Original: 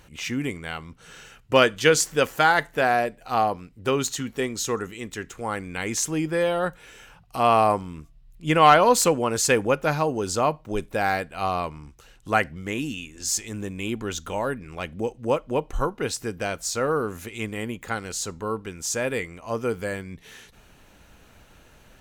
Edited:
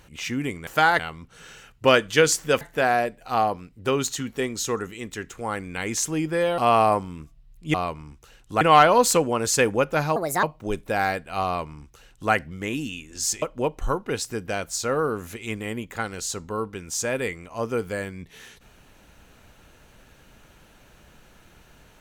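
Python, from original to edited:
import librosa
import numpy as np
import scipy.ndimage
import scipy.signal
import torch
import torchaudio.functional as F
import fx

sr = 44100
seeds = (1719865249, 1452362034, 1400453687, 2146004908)

y = fx.edit(x, sr, fx.move(start_s=2.29, length_s=0.32, to_s=0.67),
    fx.cut(start_s=6.58, length_s=0.78),
    fx.speed_span(start_s=10.07, length_s=0.41, speed=1.51),
    fx.duplicate(start_s=11.5, length_s=0.87, to_s=8.52),
    fx.cut(start_s=13.47, length_s=1.87), tone=tone)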